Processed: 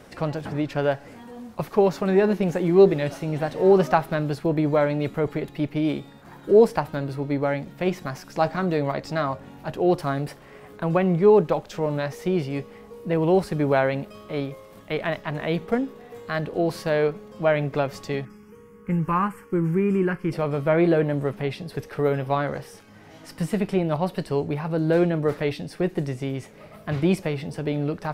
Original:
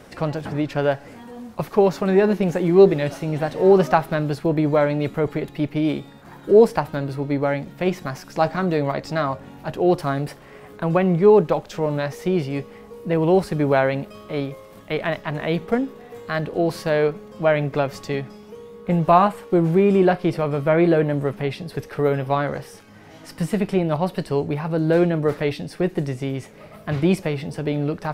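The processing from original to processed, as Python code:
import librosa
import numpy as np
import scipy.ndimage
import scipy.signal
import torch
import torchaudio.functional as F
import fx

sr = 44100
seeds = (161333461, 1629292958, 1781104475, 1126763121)

y = fx.fixed_phaser(x, sr, hz=1600.0, stages=4, at=(18.25, 20.32))
y = y * librosa.db_to_amplitude(-2.5)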